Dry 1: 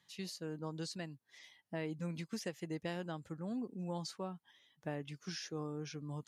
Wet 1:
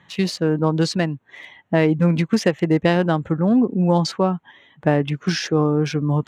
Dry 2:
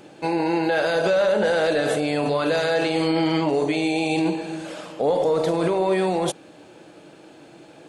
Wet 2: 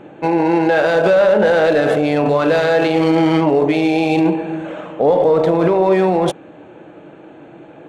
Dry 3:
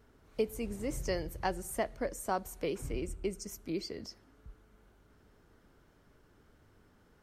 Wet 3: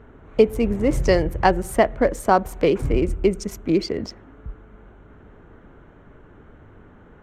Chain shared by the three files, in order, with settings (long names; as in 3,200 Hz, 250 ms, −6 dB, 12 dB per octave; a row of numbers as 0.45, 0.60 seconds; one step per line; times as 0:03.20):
adaptive Wiener filter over 9 samples
high-shelf EQ 5,700 Hz −11.5 dB
normalise the peak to −3 dBFS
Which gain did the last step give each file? +24.0, +7.5, +17.0 decibels